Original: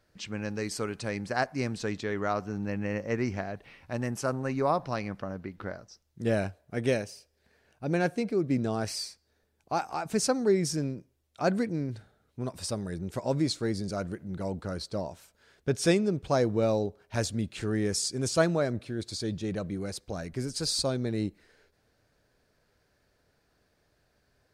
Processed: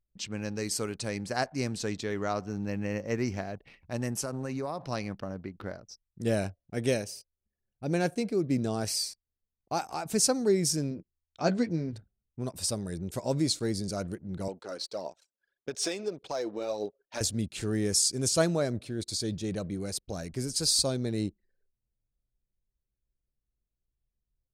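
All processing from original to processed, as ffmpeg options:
-filter_complex "[0:a]asettb=1/sr,asplit=3[a][b][c];[a]atrim=end=4.234[d];[b]atrim=start=4.23:end=4.86,asetpts=PTS-STARTPTS,afade=t=in:d=0.004:c=qsin,afade=t=out:st=0.626:d=0.004:c=qsin,highpass=80,acompressor=threshold=-29dB:ratio=5:attack=3.2:release=140:knee=1:detection=peak[e];[c]atrim=start=4.856[f];[d][e]acrossfade=d=0.004:c1=hsin:c2=qsin[g];[g][f]acrossfade=d=0.004:c1=qsin:c2=hsin,asettb=1/sr,asplit=3[h][i][j];[h]atrim=end=10.904[k];[i]atrim=start=10.9:end=11.93,asetpts=PTS-STARTPTS,afade=t=in:d=0.004:c=qsin,afade=t=out:st=1.026:d=0.004:c=qsin,lowpass=f=6.5k:w=0.5412,lowpass=f=6.5k:w=1.3066,asplit=2[l][m];[m]adelay=12,volume=-7dB[n];[l][n]amix=inputs=2:normalize=0,atrim=end_sample=45423[o];[j]atrim=start=11.926[p];[k][o]acrossfade=d=0.004:c1=hsin:c2=qsin[q];[q][p]acrossfade=d=0.004:c1=qsin:c2=hsin,asettb=1/sr,asplit=3[r][s][t];[r]atrim=end=14.484[u];[s]atrim=start=14.48:end=17.21,asetpts=PTS-STARTPTS,afade=t=in:d=0.004:c=qsin,afade=t=out:st=2.726:d=0.004:c=qsin,highpass=410,lowpass=6.2k,acompressor=threshold=-28dB:ratio=6:attack=3.2:release=140:knee=1:detection=peak,aphaser=in_gain=1:out_gain=1:delay=4.1:decay=0.43:speed=1.7:type=triangular[v];[t]atrim=start=17.206[w];[u][v]acrossfade=d=0.004:c1=hsin:c2=qsin[x];[x][w]acrossfade=d=0.004:c1=qsin:c2=hsin,aemphasis=mode=production:type=cd,anlmdn=0.00398,equalizer=f=1.5k:t=o:w=1.6:g=-4"

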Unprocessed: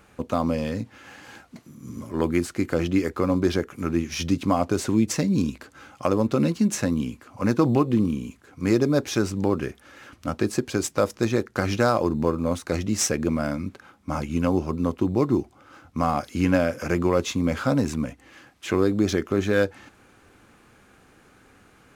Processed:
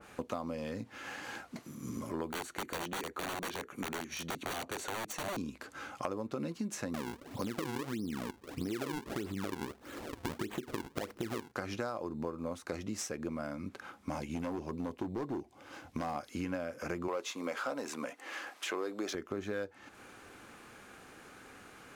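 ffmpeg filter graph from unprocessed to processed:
-filter_complex "[0:a]asettb=1/sr,asplit=3[a][b][c];[a]atrim=end=2.314[d];[b]atrim=start=2.31:end=5.37,asetpts=PTS-STARTPTS,afade=t=in:d=0.004:c=qsin,afade=t=out:st=3.056:d=0.004:c=qsin,equalizer=f=91:t=o:w=0.33:g=-14,aeval=exprs='(mod(10*val(0)+1,2)-1)/10':c=same,asuperstop=centerf=5100:order=8:qfactor=7.7[e];[c]atrim=start=5.366[f];[d][e]acrossfade=d=0.004:c1=hsin:c2=qsin[g];[g][f]acrossfade=d=0.004:c1=qsin:c2=hsin,asettb=1/sr,asplit=3[h][i][j];[h]atrim=end=6.944[k];[i]atrim=start=6.94:end=11.52,asetpts=PTS-STARTPTS,afade=t=in:d=0.004:c=qsin,afade=t=out:st=4.576:d=0.004:c=qsin,lowshelf=f=530:t=q:w=1.5:g=7.5,acompressor=threshold=-21dB:ratio=3:attack=3.2:release=140:knee=1:detection=peak,acrusher=samples=41:mix=1:aa=0.000001:lfo=1:lforange=65.6:lforate=1.6[l];[j]atrim=start=11.516[m];[k][l]acrossfade=d=0.004:c1=hsin:c2=qsin[n];[n][m]acrossfade=d=0.004:c1=qsin:c2=hsin,asettb=1/sr,asplit=3[o][p][q];[o]atrim=end=14.094[r];[p]atrim=start=14.09:end=16.16,asetpts=PTS-STARTPTS,afade=t=in:d=0.004:c=qsin,afade=t=out:st=2.066:d=0.004:c=qsin,equalizer=f=1.3k:t=o:w=0.26:g=-12,asoftclip=type=hard:threshold=-19dB[s];[q]atrim=start=16.156[t];[r][s]acrossfade=d=0.004:c1=hsin:c2=qsin[u];[u][t]acrossfade=d=0.004:c1=qsin:c2=hsin,asettb=1/sr,asplit=3[v][w][x];[v]atrim=end=17.084[y];[w]atrim=start=17.08:end=19.15,asetpts=PTS-STARTPTS,afade=t=in:d=0.004:c=qsin,afade=t=out:st=2.066:d=0.004:c=qsin,highpass=470,aeval=exprs='0.316*sin(PI/2*1.58*val(0)/0.316)':c=same[z];[x]atrim=start=19.146[aa];[y][z]acrossfade=d=0.004:c1=hsin:c2=qsin[ab];[ab][aa]acrossfade=d=0.004:c1=qsin:c2=hsin,lowshelf=f=200:g=-10,acompressor=threshold=-39dB:ratio=5,adynamicequalizer=threshold=0.00158:dfrequency=1900:dqfactor=0.7:tfrequency=1900:tqfactor=0.7:attack=5:release=100:ratio=0.375:range=2:mode=cutabove:tftype=highshelf,volume=3dB"

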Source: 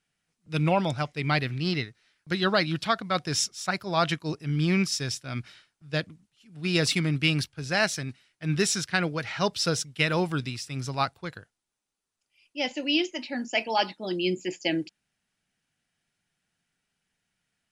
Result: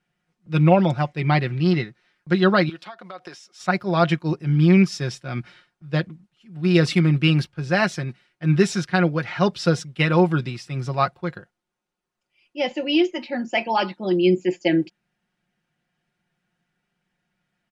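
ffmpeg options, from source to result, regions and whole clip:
-filter_complex "[0:a]asettb=1/sr,asplit=3[a][b][c];[a]atrim=end=2.694[d];[b]atrim=start=2.69:end=3.6,asetpts=PTS-STARTPTS,afade=t=in:d=0.004:c=qsin,afade=t=out:st=0.906:d=0.004:c=qsin,highpass=440,acompressor=threshold=-38dB:ratio=16:attack=3.2:release=140:knee=1:detection=peak[e];[c]atrim=start=3.596[f];[d][e]acrossfade=d=0.004:c1=hsin:c2=qsin[g];[g][f]acrossfade=d=0.004:c1=qsin:c2=hsin,lowpass=f=1.3k:p=1,lowshelf=f=73:g=-6,aecho=1:1:5.6:0.58,volume=7dB"

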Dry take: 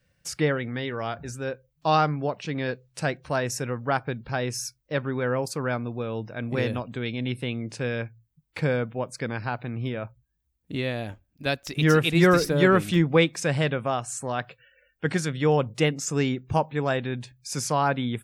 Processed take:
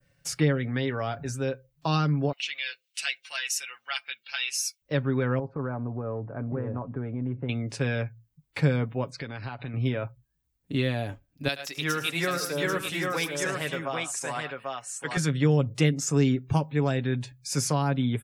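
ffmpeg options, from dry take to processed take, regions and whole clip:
-filter_complex "[0:a]asettb=1/sr,asplit=3[a][b][c];[a]atrim=end=2.324[d];[b]atrim=start=2.32:end=4.82,asetpts=PTS-STARTPTS,afade=t=in:d=0.004:c=qsin,afade=t=out:st=2.496:d=0.004:c=qsin,highpass=f=2.8k:t=q:w=2.9,aecho=1:1:5.8:0.72,atrim=end_sample=110250[e];[c]atrim=start=4.816[f];[d][e]acrossfade=d=0.004:c1=hsin:c2=qsin[g];[g][f]acrossfade=d=0.004:c1=qsin:c2=hsin,asettb=1/sr,asplit=3[h][i][j];[h]atrim=end=5.394[k];[i]atrim=start=5.39:end=7.49,asetpts=PTS-STARTPTS,afade=t=in:d=0.004:c=qsin,afade=t=out:st=2.096:d=0.004:c=qsin,lowpass=f=1.3k:w=0.5412,lowpass=f=1.3k:w=1.3066,acompressor=threshold=-30dB:ratio=4:attack=3.2:release=140:knee=1:detection=peak[l];[j]atrim=start=7.486[m];[k][l]acrossfade=d=0.004:c1=hsin:c2=qsin[n];[n][m]acrossfade=d=0.004:c1=qsin:c2=hsin,asettb=1/sr,asplit=3[o][p][q];[o]atrim=end=9.104[r];[p]atrim=start=9.1:end=9.74,asetpts=PTS-STARTPTS,afade=t=in:d=0.004:c=qsin,afade=t=out:st=0.636:d=0.004:c=qsin,acompressor=threshold=-34dB:ratio=12:attack=3.2:release=140:knee=1:detection=peak,lowpass=f=3.8k:t=q:w=1.8[s];[q]atrim=start=9.736[t];[r][s]acrossfade=d=0.004:c1=hsin:c2=qsin[u];[u][t]acrossfade=d=0.004:c1=qsin:c2=hsin,asettb=1/sr,asplit=3[v][w][x];[v]atrim=end=11.484[y];[w]atrim=start=11.48:end=15.17,asetpts=PTS-STARTPTS,afade=t=in:d=0.004:c=qsin,afade=t=out:st=3.686:d=0.004:c=qsin,highpass=f=1.1k:p=1,aecho=1:1:79|106|791:0.158|0.237|0.596,atrim=end_sample=162729[z];[x]atrim=start=15.166[aa];[y][z]acrossfade=d=0.004:c1=hsin:c2=qsin[ab];[ab][aa]acrossfade=d=0.004:c1=qsin:c2=hsin,aecho=1:1:7.2:0.48,adynamicequalizer=threshold=0.00891:dfrequency=3700:dqfactor=0.73:tfrequency=3700:tqfactor=0.73:attack=5:release=100:ratio=0.375:range=2.5:mode=cutabove:tftype=bell,acrossover=split=320|3000[ac][ad][ae];[ad]acompressor=threshold=-29dB:ratio=6[af];[ac][af][ae]amix=inputs=3:normalize=0,volume=1dB"

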